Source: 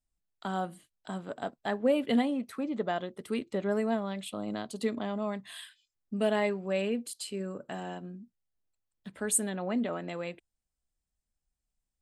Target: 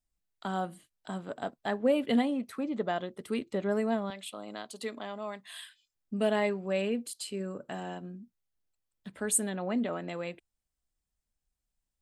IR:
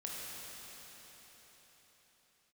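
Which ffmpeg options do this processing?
-filter_complex "[0:a]asettb=1/sr,asplit=3[a][b][c];[a]atrim=end=4.104[d];[b]atrim=start=4.1:end=5.54,asetpts=PTS-STARTPTS,afade=t=in:d=0.004:c=qsin,afade=t=out:st=1.436:d=0.004:c=qsin,highpass=f=690:p=1[e];[c]atrim=start=5.536[f];[d][e]acrossfade=d=0.004:c1=hsin:c2=qsin[g];[g][f]acrossfade=d=0.004:c1=qsin:c2=hsin"

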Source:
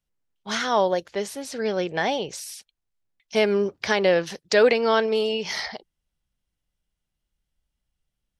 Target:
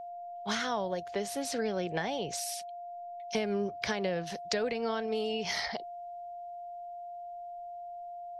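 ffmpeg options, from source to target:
-filter_complex "[0:a]acrossover=split=160[a][b];[b]acompressor=threshold=-30dB:ratio=10[c];[a][c]amix=inputs=2:normalize=0,aeval=exprs='val(0)+0.01*sin(2*PI*700*n/s)':c=same"

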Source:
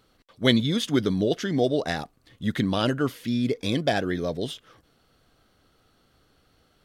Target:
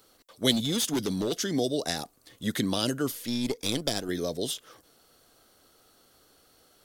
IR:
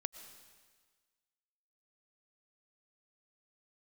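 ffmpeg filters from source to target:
-filter_complex "[0:a]bass=f=250:g=-12,treble=f=4k:g=10,acrossover=split=290|3000[a][b][c];[b]acompressor=threshold=-35dB:ratio=4[d];[a][d][c]amix=inputs=3:normalize=0,equalizer=f=3k:w=0.41:g=-5.5,asettb=1/sr,asplit=3[e][f][g];[e]atrim=end=0.514[h];[f]atrim=start=0.51:end=1.36,asetpts=PTS-STARTPTS,afade=t=in:d=0.004:c=qsin,afade=t=out:st=0.846:d=0.004:c=qsin,asoftclip=type=hard:threshold=-28dB[i];[g]atrim=start=1.356[j];[h][i]acrossfade=d=0.004:c1=hsin:c2=qsin[k];[k][j]acrossfade=d=0.004:c1=qsin:c2=hsin,asettb=1/sr,asplit=3[l][m][n];[l]atrim=end=3.114[o];[m]atrim=start=3.11:end=4.09,asetpts=PTS-STARTPTS,afade=t=in:d=0.004:c=qsin,afade=t=out:st=0.976:d=0.004:c=qsin,aeval=exprs='0.224*(cos(1*acos(clip(val(0)/0.224,-1,1)))-cos(1*PI/2))+0.0112*(cos(7*acos(clip(val(0)/0.224,-1,1)))-cos(7*PI/2))+0.01*(cos(8*acos(clip(val(0)/0.224,-1,1)))-cos(8*PI/2))':c=same[p];[n]atrim=start=4.086[q];[o][p]acrossfade=d=0.004:c1=hsin:c2=qsin[r];[r][q]acrossfade=d=0.004:c1=qsin:c2=hsin,volume=4.5dB"

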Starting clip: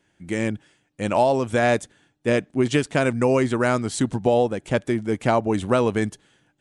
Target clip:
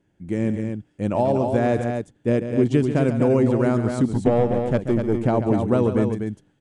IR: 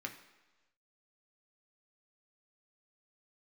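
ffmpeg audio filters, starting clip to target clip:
-filter_complex "[0:a]tiltshelf=f=740:g=8,asettb=1/sr,asplit=3[a][b][c];[a]atrim=end=4.144[d];[b]atrim=start=4.14:end=5.16,asetpts=PTS-STARTPTS,afade=t=in:d=0.004:c=qsin,afade=t=out:st=1.016:d=0.004:c=qsin,aeval=exprs='0.668*(cos(1*acos(clip(val(0)/0.668,-1,1)))-cos(1*PI/2))+0.0422*(cos(6*acos(clip(val(0)/0.668,-1,1)))-cos(6*PI/2))':c=same[e];[c]atrim=start=5.156[f];[d][e]acrossfade=d=0.004:c1=hsin:c2=qsin[g];[g][f]acrossfade=d=0.004:c1=qsin:c2=hsin,aecho=1:1:139.9|247.8:0.316|0.501,volume=-4dB"

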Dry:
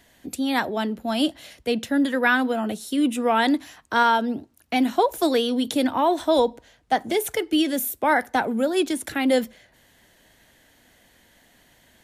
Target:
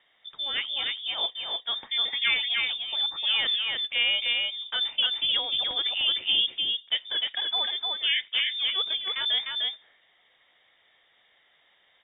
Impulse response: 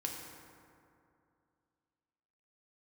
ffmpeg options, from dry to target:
-af "lowshelf=f=140:g=-8.5,aecho=1:1:302:0.708,lowpass=f=3.2k:t=q:w=0.5098,lowpass=f=3.2k:t=q:w=0.6013,lowpass=f=3.2k:t=q:w=0.9,lowpass=f=3.2k:t=q:w=2.563,afreqshift=-3800,volume=-6dB"

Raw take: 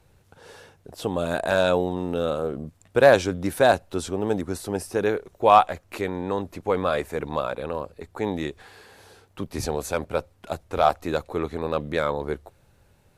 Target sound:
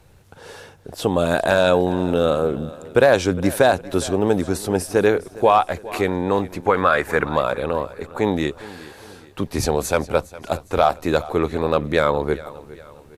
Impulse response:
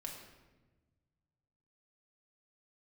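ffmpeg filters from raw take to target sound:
-filter_complex "[0:a]asettb=1/sr,asplit=3[a][b][c];[a]atrim=end=6.664[d];[b]atrim=start=6.66:end=7.29,asetpts=PTS-STARTPTS,afade=t=in:d=0.004:c=qsin,afade=t=out:st=0.626:d=0.004:c=qsin,equalizer=f=1.5k:t=o:w=1.1:g=12[e];[c]atrim=start=7.286[f];[d][e]acrossfade=d=0.004:c1=hsin:c2=qsin[g];[g][f]acrossfade=d=0.004:c1=qsin:c2=hsin,alimiter=limit=-11.5dB:level=0:latency=1:release=176,aecho=1:1:409|818|1227|1636:0.119|0.0523|0.023|0.0101,volume=7dB"

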